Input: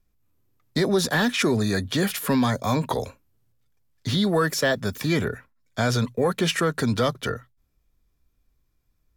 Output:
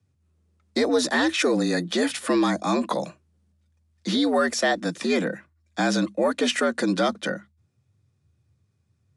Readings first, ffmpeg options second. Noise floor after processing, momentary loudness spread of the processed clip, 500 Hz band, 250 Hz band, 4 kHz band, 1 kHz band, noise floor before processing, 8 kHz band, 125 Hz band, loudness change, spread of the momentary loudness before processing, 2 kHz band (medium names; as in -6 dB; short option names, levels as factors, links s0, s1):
-70 dBFS, 10 LU, +1.0 dB, +1.0 dB, 0.0 dB, +1.0 dB, -70 dBFS, -0.5 dB, -9.5 dB, 0.0 dB, 10 LU, +0.5 dB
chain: -af "aresample=22050,aresample=44100,afreqshift=80"